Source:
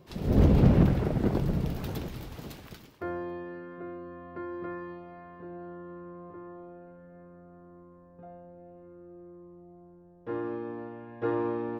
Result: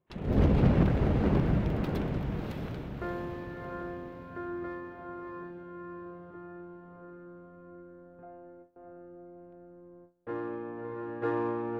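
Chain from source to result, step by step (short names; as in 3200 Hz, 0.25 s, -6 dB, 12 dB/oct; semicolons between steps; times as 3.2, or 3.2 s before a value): Wiener smoothing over 9 samples; high shelf 5800 Hz -7.5 dB; diffused feedback echo 0.651 s, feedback 46%, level -4 dB; gate with hold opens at -43 dBFS; bell 2200 Hz +6 dB 2.8 oct; gain -3.5 dB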